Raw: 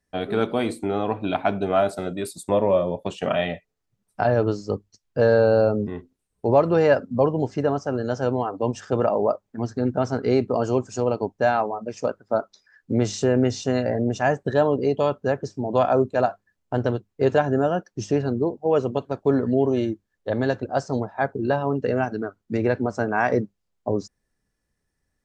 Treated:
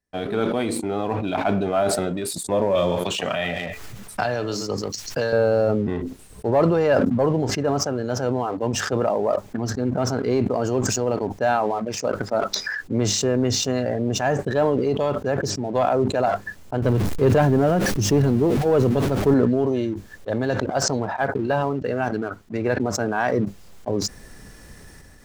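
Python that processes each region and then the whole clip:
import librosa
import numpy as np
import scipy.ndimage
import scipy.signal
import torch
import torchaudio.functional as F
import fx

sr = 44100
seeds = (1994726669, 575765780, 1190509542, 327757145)

y = fx.chain(x, sr, fx.tilt_shelf(db=-6.0, hz=1200.0),
    fx.echo_single(ms=136, db=-17.0),
    fx.band_squash(depth_pct=100), at=(2.75, 5.33))
y = fx.chain(y, sr, fx.zero_step(step_db=-34.5),
    fx.low_shelf(hz=330.0, db=8.5), at=(16.82, 19.34))
y = fx.chain(y, sr, fx.peak_eq(hz=1800.0, db=3.0, octaves=2.8),
    fx.upward_expand(threshold_db=-35.0, expansion=1.5), at=(20.7, 22.8))
y = fx.leveller(y, sr, passes=1)
y = fx.sustainer(y, sr, db_per_s=22.0)
y = F.gain(torch.from_numpy(y), -5.0).numpy()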